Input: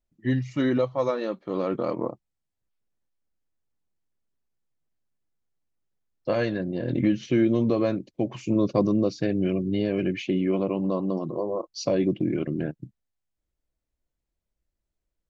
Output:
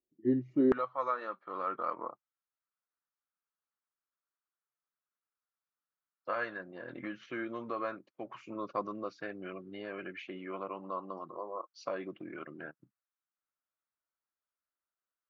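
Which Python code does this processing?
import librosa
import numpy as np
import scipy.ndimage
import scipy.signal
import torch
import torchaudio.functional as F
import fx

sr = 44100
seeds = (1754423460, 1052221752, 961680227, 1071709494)

y = fx.bandpass_q(x, sr, hz=fx.steps((0.0, 350.0), (0.72, 1300.0)), q=3.8)
y = y * 10.0 ** (4.5 / 20.0)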